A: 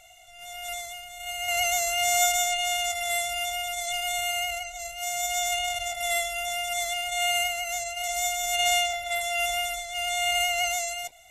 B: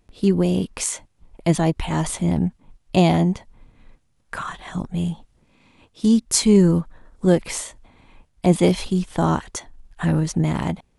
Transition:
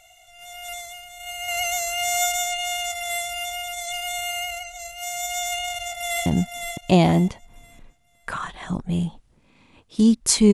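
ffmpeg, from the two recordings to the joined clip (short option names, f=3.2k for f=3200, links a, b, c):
-filter_complex "[0:a]apad=whole_dur=10.53,atrim=end=10.53,atrim=end=6.262[a];[1:a]atrim=start=2.308:end=6.58[b];[a][b]acrossfade=d=0.004:c1=hsin:c2=hsin,asplit=2[c][d];[d]afade=t=in:st=5.65:d=0.01,afade=t=out:st=6.26:d=0.01,aecho=0:1:510|1020|1530|2040:0.530884|0.159265|0.0477796|0.0143339[e];[c][e]amix=inputs=2:normalize=0"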